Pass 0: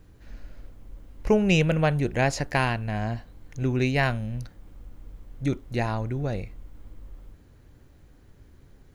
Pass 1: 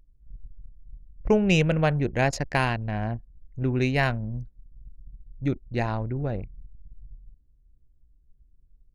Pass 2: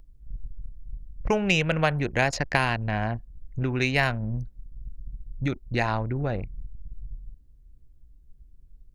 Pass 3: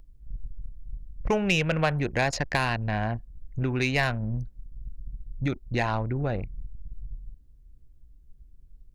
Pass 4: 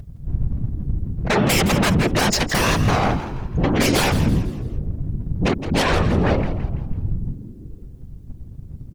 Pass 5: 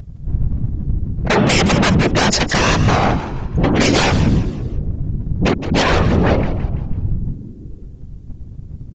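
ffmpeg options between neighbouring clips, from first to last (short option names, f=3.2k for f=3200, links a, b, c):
-af "anlmdn=15.8"
-filter_complex "[0:a]acrossover=split=790|5800[a][b][c];[a]acompressor=threshold=-33dB:ratio=4[d];[b]acompressor=threshold=-28dB:ratio=4[e];[c]acompressor=threshold=-50dB:ratio=4[f];[d][e][f]amix=inputs=3:normalize=0,volume=7dB"
-af "asoftclip=type=tanh:threshold=-13dB"
-filter_complex "[0:a]aeval=exprs='0.224*sin(PI/2*3.98*val(0)/0.224)':c=same,afftfilt=real='hypot(re,im)*cos(2*PI*random(0))':imag='hypot(re,im)*sin(2*PI*random(1))':win_size=512:overlap=0.75,asplit=5[a][b][c][d][e];[b]adelay=166,afreqshift=89,volume=-12dB[f];[c]adelay=332,afreqshift=178,volume=-20.2dB[g];[d]adelay=498,afreqshift=267,volume=-28.4dB[h];[e]adelay=664,afreqshift=356,volume=-36.5dB[i];[a][f][g][h][i]amix=inputs=5:normalize=0,volume=4.5dB"
-af "aresample=16000,aresample=44100,volume=4dB"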